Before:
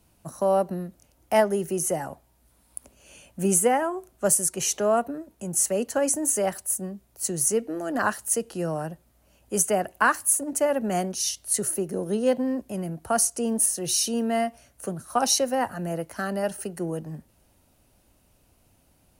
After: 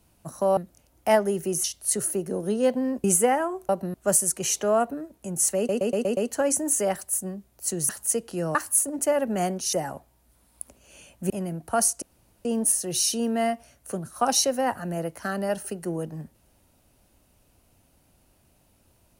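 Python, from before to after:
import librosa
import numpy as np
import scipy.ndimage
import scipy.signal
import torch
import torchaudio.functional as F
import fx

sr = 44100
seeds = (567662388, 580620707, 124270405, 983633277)

y = fx.edit(x, sr, fx.move(start_s=0.57, length_s=0.25, to_s=4.11),
    fx.swap(start_s=1.89, length_s=1.57, other_s=11.27, other_length_s=1.4),
    fx.stutter(start_s=5.74, slice_s=0.12, count=6),
    fx.cut(start_s=7.46, length_s=0.65),
    fx.cut(start_s=8.77, length_s=1.32),
    fx.insert_room_tone(at_s=13.39, length_s=0.43), tone=tone)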